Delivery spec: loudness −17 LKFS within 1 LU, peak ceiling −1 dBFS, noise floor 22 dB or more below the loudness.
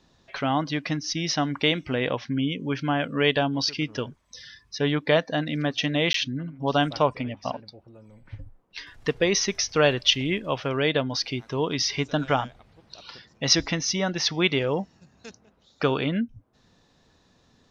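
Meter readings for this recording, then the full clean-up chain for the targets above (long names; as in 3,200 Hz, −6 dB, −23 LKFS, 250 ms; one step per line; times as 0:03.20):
number of dropouts 1; longest dropout 13 ms; integrated loudness −25.0 LKFS; sample peak −5.5 dBFS; target loudness −17.0 LKFS
→ repair the gap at 0:06.13, 13 ms
level +8 dB
brickwall limiter −1 dBFS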